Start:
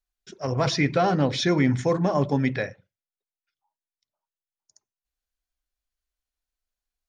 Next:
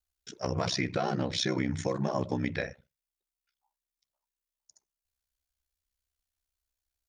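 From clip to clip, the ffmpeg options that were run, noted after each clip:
ffmpeg -i in.wav -af "highshelf=frequency=3800:gain=6.5,acompressor=threshold=-24dB:ratio=6,aeval=exprs='val(0)*sin(2*PI*32*n/s)':channel_layout=same" out.wav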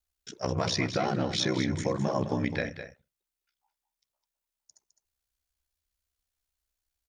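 ffmpeg -i in.wav -af "aecho=1:1:209:0.316,volume=1.5dB" out.wav

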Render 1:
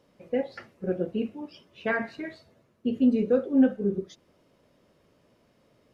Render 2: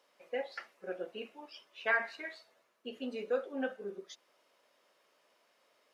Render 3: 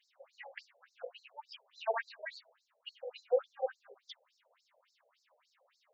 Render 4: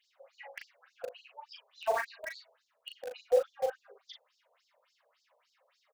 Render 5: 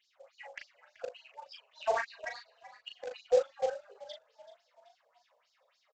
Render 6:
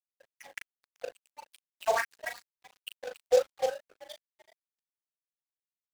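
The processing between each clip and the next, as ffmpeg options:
ffmpeg -i in.wav -af "highpass=810" out.wav
ffmpeg -i in.wav -af "afftfilt=real='re*between(b*sr/1024,570*pow(5700/570,0.5+0.5*sin(2*PI*3.5*pts/sr))/1.41,570*pow(5700/570,0.5+0.5*sin(2*PI*3.5*pts/sr))*1.41)':imag='im*between(b*sr/1024,570*pow(5700/570,0.5+0.5*sin(2*PI*3.5*pts/sr))/1.41,570*pow(5700/570,0.5+0.5*sin(2*PI*3.5*pts/sr))*1.41)':win_size=1024:overlap=0.75,volume=4.5dB" out.wav
ffmpeg -i in.wav -filter_complex "[0:a]asplit=2[link_01][link_02];[link_02]acrusher=bits=5:mix=0:aa=0.000001,volume=-8dB[link_03];[link_01][link_03]amix=inputs=2:normalize=0,asplit=2[link_04][link_05];[link_05]adelay=38,volume=-5.5dB[link_06];[link_04][link_06]amix=inputs=2:normalize=0" out.wav
ffmpeg -i in.wav -filter_complex "[0:a]aresample=16000,acrusher=bits=6:mode=log:mix=0:aa=0.000001,aresample=44100,asplit=5[link_01][link_02][link_03][link_04][link_05];[link_02]adelay=381,afreqshift=48,volume=-18dB[link_06];[link_03]adelay=762,afreqshift=96,volume=-24.7dB[link_07];[link_04]adelay=1143,afreqshift=144,volume=-31.5dB[link_08];[link_05]adelay=1524,afreqshift=192,volume=-38.2dB[link_09];[link_01][link_06][link_07][link_08][link_09]amix=inputs=5:normalize=0" out.wav
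ffmpeg -i in.wav -af "adynamicsmooth=sensitivity=6.5:basefreq=2200,aeval=exprs='sgn(val(0))*max(abs(val(0))-0.00237,0)':channel_layout=same,crystalizer=i=3.5:c=0,volume=2.5dB" out.wav

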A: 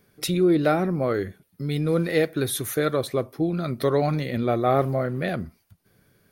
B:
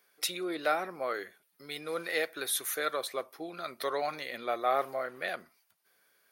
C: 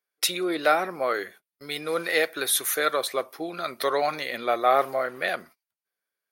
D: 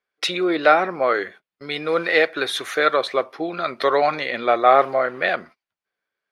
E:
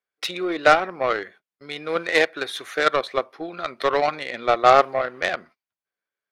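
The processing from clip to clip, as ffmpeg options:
ffmpeg -i in.wav -af "highpass=780,volume=-2.5dB" out.wav
ffmpeg -i in.wav -af "agate=range=-26dB:threshold=-55dB:ratio=16:detection=peak,volume=8dB" out.wav
ffmpeg -i in.wav -af "lowpass=3500,volume=6.5dB" out.wav
ffmpeg -i in.wav -af "aeval=exprs='0.891*(cos(1*acos(clip(val(0)/0.891,-1,1)))-cos(1*PI/2))+0.0708*(cos(7*acos(clip(val(0)/0.891,-1,1)))-cos(7*PI/2))':channel_layout=same" out.wav

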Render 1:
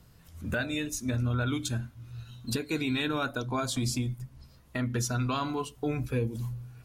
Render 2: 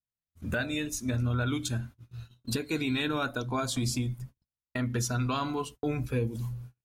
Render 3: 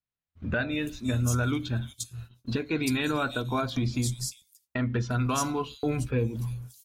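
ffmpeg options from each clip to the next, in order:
ffmpeg -i in.wav -af "agate=range=-46dB:threshold=-43dB:ratio=16:detection=peak" out.wav
ffmpeg -i in.wav -filter_complex "[0:a]acrossover=split=4100[link_01][link_02];[link_02]adelay=350[link_03];[link_01][link_03]amix=inputs=2:normalize=0,volume=2.5dB" out.wav

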